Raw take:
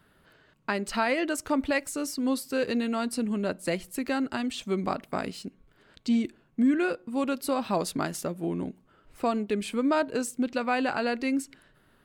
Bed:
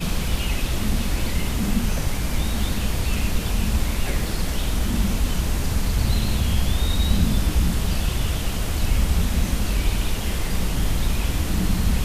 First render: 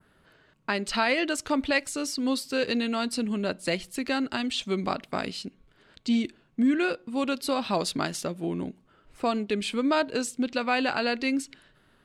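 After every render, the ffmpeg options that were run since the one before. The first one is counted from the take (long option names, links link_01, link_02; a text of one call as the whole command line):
ffmpeg -i in.wav -af "lowpass=11000,adynamicequalizer=threshold=0.00355:dfrequency=3700:dqfactor=0.9:tfrequency=3700:tqfactor=0.9:attack=5:release=100:ratio=0.375:range=4:mode=boostabove:tftype=bell" out.wav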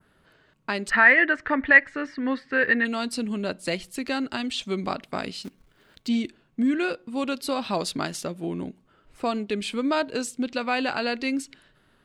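ffmpeg -i in.wav -filter_complex "[0:a]asplit=3[link_01][link_02][link_03];[link_01]afade=type=out:start_time=0.89:duration=0.02[link_04];[link_02]lowpass=frequency=1800:width_type=q:width=10,afade=type=in:start_time=0.89:duration=0.02,afade=type=out:start_time=2.84:duration=0.02[link_05];[link_03]afade=type=in:start_time=2.84:duration=0.02[link_06];[link_04][link_05][link_06]amix=inputs=3:normalize=0,asettb=1/sr,asplit=3[link_07][link_08][link_09];[link_07]atrim=end=5.434[link_10];[link_08]atrim=start=5.43:end=6.08,asetpts=PTS-STARTPTS,afade=type=in:duration=0.004:curve=qsin,afade=type=out:start_time=0.646:duration=0.004:curve=qsin,acrusher=bits=3:mode=log:mix=0:aa=0.000001[link_11];[link_09]atrim=start=6.076[link_12];[link_10][link_11]acrossfade=duration=0.004:curve1=hsin:curve2=qsin[link_13];[link_13][link_12]acrossfade=duration=0.004:curve1=qsin:curve2=hsin" out.wav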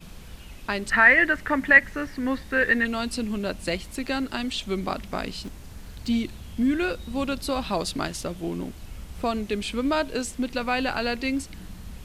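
ffmpeg -i in.wav -i bed.wav -filter_complex "[1:a]volume=-19.5dB[link_01];[0:a][link_01]amix=inputs=2:normalize=0" out.wav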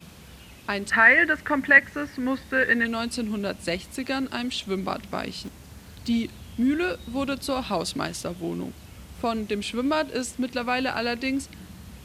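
ffmpeg -i in.wav -af "highpass=frequency=67:width=0.5412,highpass=frequency=67:width=1.3066" out.wav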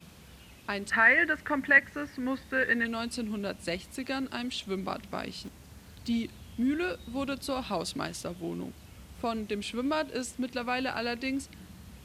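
ffmpeg -i in.wav -af "volume=-5.5dB" out.wav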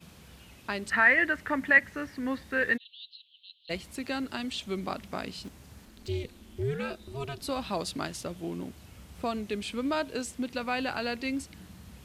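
ffmpeg -i in.wav -filter_complex "[0:a]asplit=3[link_01][link_02][link_03];[link_01]afade=type=out:start_time=2.76:duration=0.02[link_04];[link_02]asuperpass=centerf=3500:order=8:qfactor=3,afade=type=in:start_time=2.76:duration=0.02,afade=type=out:start_time=3.69:duration=0.02[link_05];[link_03]afade=type=in:start_time=3.69:duration=0.02[link_06];[link_04][link_05][link_06]amix=inputs=3:normalize=0,asettb=1/sr,asplit=3[link_07][link_08][link_09];[link_07]atrim=end=5.854[link_10];[link_08]atrim=start=5.85:end=7.41,asetpts=PTS-STARTPTS,afade=type=in:duration=0.004:curve=qsin,afade=type=out:start_time=1.556:duration=0.004:curve=qsin,aeval=exprs='val(0)*sin(2*PI*140*n/s)':channel_layout=same[link_11];[link_09]atrim=start=7.406[link_12];[link_10][link_11]acrossfade=duration=0.004:curve1=hsin:curve2=qsin[link_13];[link_13][link_12]acrossfade=duration=0.004:curve1=qsin:curve2=hsin" out.wav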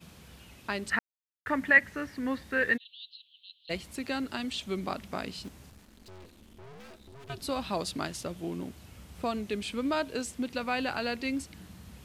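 ffmpeg -i in.wav -filter_complex "[0:a]asettb=1/sr,asplit=3[link_01][link_02][link_03];[link_01]atrim=end=5.704[link_04];[link_02]atrim=start=5.7:end=7.3,asetpts=PTS-STARTPTS,afade=type=in:duration=0.004:curve=qsin,afade=type=out:start_time=1.596:duration=0.004:curve=qsin,aeval=exprs='(tanh(251*val(0)+0.65)-tanh(0.65))/251':channel_layout=same[link_05];[link_03]atrim=start=7.296[link_06];[link_04][link_05]acrossfade=duration=0.004:curve1=hsin:curve2=qsin[link_07];[link_07][link_06]acrossfade=duration=0.004:curve1=qsin:curve2=hsin,asplit=3[link_08][link_09][link_10];[link_08]atrim=end=0.99,asetpts=PTS-STARTPTS,afade=type=out:start_time=0.986:duration=0.004:curve=hsin[link_11];[link_09]atrim=start=0.99:end=1.46,asetpts=PTS-STARTPTS,volume=0[link_12];[link_10]atrim=start=1.46,asetpts=PTS-STARTPTS,afade=type=in:duration=0.004:curve=hsin[link_13];[link_11][link_12][link_13]concat=n=3:v=0:a=1" out.wav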